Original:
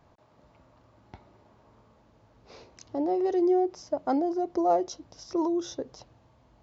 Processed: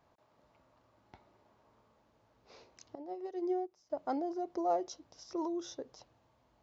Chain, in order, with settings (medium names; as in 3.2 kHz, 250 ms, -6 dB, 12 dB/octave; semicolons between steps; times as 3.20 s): bass shelf 260 Hz -8 dB; 2.95–3.90 s: upward expansion 2.5:1, over -34 dBFS; trim -6.5 dB